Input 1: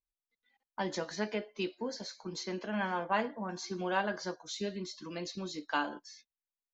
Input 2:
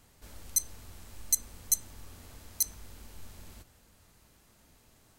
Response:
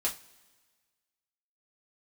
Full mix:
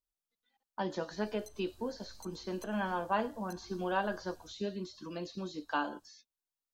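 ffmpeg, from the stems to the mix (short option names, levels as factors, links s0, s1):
-filter_complex "[0:a]volume=1[s0];[1:a]adelay=900,volume=0.266[s1];[s0][s1]amix=inputs=2:normalize=0,acrossover=split=3500[s2][s3];[s3]acompressor=threshold=0.002:ratio=4:attack=1:release=60[s4];[s2][s4]amix=inputs=2:normalize=0,equalizer=f=2100:t=o:w=0.39:g=-11.5"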